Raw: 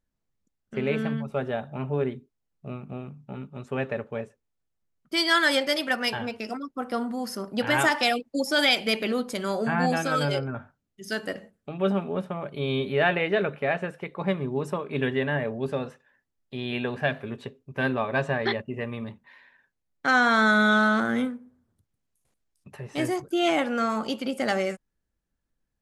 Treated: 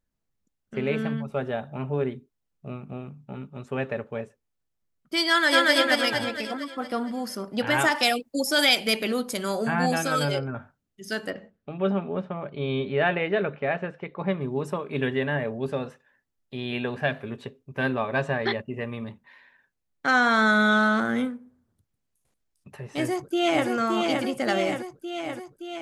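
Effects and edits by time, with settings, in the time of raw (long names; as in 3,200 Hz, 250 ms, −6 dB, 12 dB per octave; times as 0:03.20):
0:05.29–0:05.72: delay throw 230 ms, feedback 55%, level 0 dB
0:07.95–0:10.31: high-shelf EQ 6,800 Hz +10.5 dB
0:11.30–0:14.41: high-frequency loss of the air 150 metres
0:22.88–0:23.68: delay throw 570 ms, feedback 70%, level −3.5 dB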